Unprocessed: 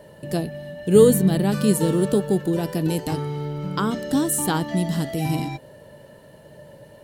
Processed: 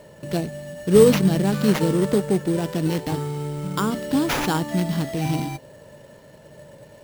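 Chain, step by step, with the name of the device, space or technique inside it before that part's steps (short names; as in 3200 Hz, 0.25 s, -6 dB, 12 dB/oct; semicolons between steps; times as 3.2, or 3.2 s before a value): early companding sampler (sample-rate reducer 8500 Hz, jitter 0%; companded quantiser 6-bit)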